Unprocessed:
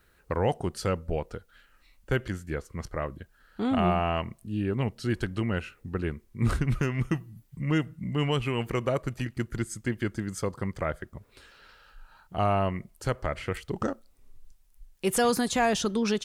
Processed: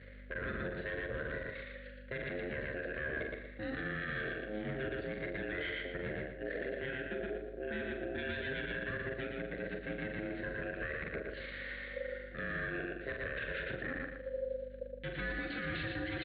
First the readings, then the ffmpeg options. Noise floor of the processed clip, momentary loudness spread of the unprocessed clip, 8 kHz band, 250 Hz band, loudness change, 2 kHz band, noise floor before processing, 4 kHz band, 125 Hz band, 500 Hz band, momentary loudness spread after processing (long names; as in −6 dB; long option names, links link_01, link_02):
−49 dBFS, 11 LU, below −40 dB, −12.5 dB, −10.0 dB, 0.0 dB, −63 dBFS, −10.0 dB, −15.5 dB, −8.5 dB, 4 LU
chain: -filter_complex "[0:a]aeval=exprs='if(lt(val(0),0),0.251*val(0),val(0))':channel_layout=same,areverse,acompressor=threshold=-42dB:ratio=16,areverse,aresample=8000,aresample=44100,aeval=exprs='val(0)*sin(2*PI*530*n/s)':channel_layout=same,firequalizer=gain_entry='entry(540,0);entry(900,-24);entry(1600,13);entry(2400,0)':delay=0.05:min_phase=1,aeval=exprs='val(0)+0.000708*(sin(2*PI*50*n/s)+sin(2*PI*2*50*n/s)/2+sin(2*PI*3*50*n/s)/3+sin(2*PI*4*50*n/s)/4+sin(2*PI*5*50*n/s)/5)':channel_layout=same,highpass=48,asplit=2[link_01][link_02];[link_02]adelay=43,volume=-7.5dB[link_03];[link_01][link_03]amix=inputs=2:normalize=0,aecho=1:1:116|232|348|464:0.631|0.221|0.0773|0.0271,alimiter=level_in=17.5dB:limit=-24dB:level=0:latency=1:release=35,volume=-17.5dB,volume=12dB"